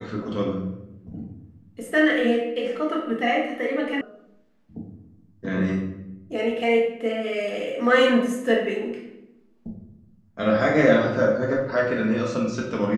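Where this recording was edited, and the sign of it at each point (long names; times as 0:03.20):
0:04.01: cut off before it has died away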